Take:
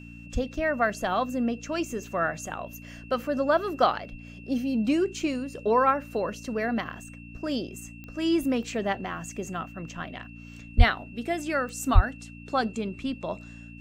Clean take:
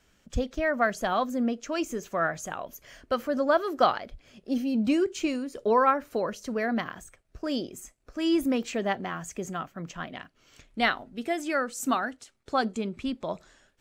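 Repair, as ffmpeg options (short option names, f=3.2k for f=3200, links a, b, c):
-filter_complex "[0:a]adeclick=t=4,bandreject=f=57.9:t=h:w=4,bandreject=f=115.8:t=h:w=4,bandreject=f=173.7:t=h:w=4,bandreject=f=231.6:t=h:w=4,bandreject=f=289.5:t=h:w=4,bandreject=f=2.7k:w=30,asplit=3[a][b][c];[a]afade=t=out:st=10.77:d=0.02[d];[b]highpass=f=140:w=0.5412,highpass=f=140:w=1.3066,afade=t=in:st=10.77:d=0.02,afade=t=out:st=10.89:d=0.02[e];[c]afade=t=in:st=10.89:d=0.02[f];[d][e][f]amix=inputs=3:normalize=0,asplit=3[g][h][i];[g]afade=t=out:st=11.94:d=0.02[j];[h]highpass=f=140:w=0.5412,highpass=f=140:w=1.3066,afade=t=in:st=11.94:d=0.02,afade=t=out:st=12.06:d=0.02[k];[i]afade=t=in:st=12.06:d=0.02[l];[j][k][l]amix=inputs=3:normalize=0"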